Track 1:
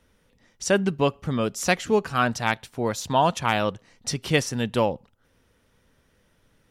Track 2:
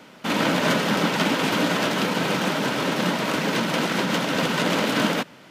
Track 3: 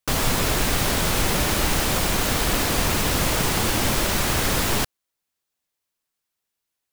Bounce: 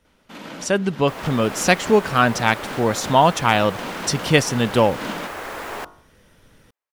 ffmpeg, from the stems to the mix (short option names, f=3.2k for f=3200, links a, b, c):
-filter_complex "[0:a]volume=-0.5dB,asplit=2[a][b];[1:a]adelay=50,volume=-15dB[c];[2:a]acrossover=split=360 2100:gain=0.1 1 0.158[d][e][f];[d][e][f]amix=inputs=3:normalize=0,bandreject=f=49.7:t=h:w=4,bandreject=f=99.4:t=h:w=4,bandreject=f=149.1:t=h:w=4,bandreject=f=198.8:t=h:w=4,bandreject=f=248.5:t=h:w=4,bandreject=f=298.2:t=h:w=4,bandreject=f=347.9:t=h:w=4,bandreject=f=397.6:t=h:w=4,bandreject=f=447.3:t=h:w=4,bandreject=f=497:t=h:w=4,bandreject=f=546.7:t=h:w=4,bandreject=f=596.4:t=h:w=4,bandreject=f=646.1:t=h:w=4,bandreject=f=695.8:t=h:w=4,bandreject=f=745.5:t=h:w=4,bandreject=f=795.2:t=h:w=4,bandreject=f=844.9:t=h:w=4,bandreject=f=894.6:t=h:w=4,bandreject=f=944.3:t=h:w=4,bandreject=f=994:t=h:w=4,bandreject=f=1.0437k:t=h:w=4,bandreject=f=1.0934k:t=h:w=4,bandreject=f=1.1431k:t=h:w=4,bandreject=f=1.1928k:t=h:w=4,bandreject=f=1.2425k:t=h:w=4,bandreject=f=1.2922k:t=h:w=4,bandreject=f=1.3419k:t=h:w=4,bandreject=f=1.3916k:t=h:w=4,bandreject=f=1.4413k:t=h:w=4,adelay=1000,volume=-10dB[g];[b]apad=whole_len=244870[h];[c][h]sidechaincompress=threshold=-30dB:ratio=8:attack=20:release=187[i];[a][i][g]amix=inputs=3:normalize=0,dynaudnorm=f=240:g=9:m=11.5dB"